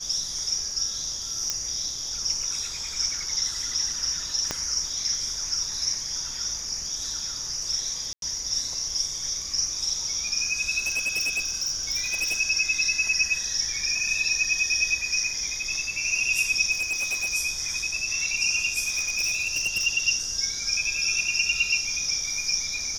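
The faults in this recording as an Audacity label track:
1.500000	1.500000	pop -10 dBFS
4.510000	4.510000	pop -11 dBFS
8.130000	8.220000	gap 92 ms
10.780000	12.400000	clipped -22.5 dBFS
16.710000	17.340000	clipped -23.5 dBFS
18.810000	19.870000	clipped -21 dBFS

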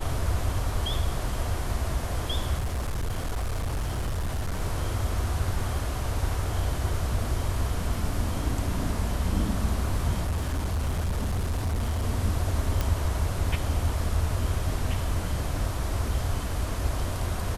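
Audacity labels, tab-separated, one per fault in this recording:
2.590000	4.620000	clipped -25 dBFS
10.230000	12.040000	clipped -23.5 dBFS
12.810000	12.810000	pop -12 dBFS

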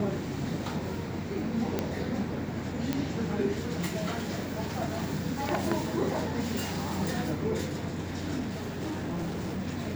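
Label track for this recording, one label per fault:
1.790000	1.790000	pop -14 dBFS
2.930000	2.930000	pop -14 dBFS
8.390000	9.600000	clipped -29.5 dBFS

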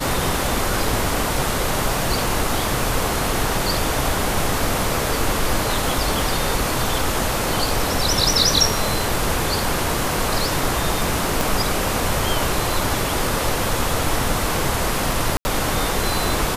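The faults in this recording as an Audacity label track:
11.410000	11.410000	pop
15.370000	15.450000	gap 80 ms

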